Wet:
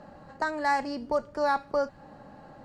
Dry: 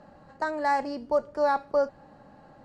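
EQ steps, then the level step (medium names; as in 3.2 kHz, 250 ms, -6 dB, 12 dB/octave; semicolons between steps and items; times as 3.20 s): dynamic bell 530 Hz, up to -7 dB, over -37 dBFS, Q 0.7; +3.5 dB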